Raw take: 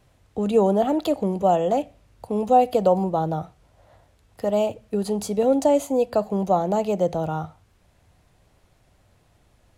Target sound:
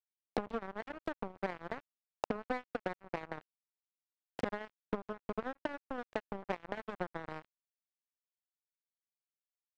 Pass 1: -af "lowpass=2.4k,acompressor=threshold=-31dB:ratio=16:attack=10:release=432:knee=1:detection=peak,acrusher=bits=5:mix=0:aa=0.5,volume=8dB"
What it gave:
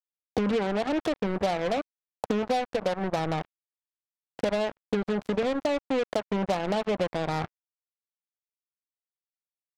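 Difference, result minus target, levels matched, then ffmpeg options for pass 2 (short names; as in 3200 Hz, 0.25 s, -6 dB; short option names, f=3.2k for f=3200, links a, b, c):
compressor: peak gain reduction -8.5 dB
-af "lowpass=2.4k,acompressor=threshold=-40dB:ratio=16:attack=10:release=432:knee=1:detection=peak,acrusher=bits=5:mix=0:aa=0.5,volume=8dB"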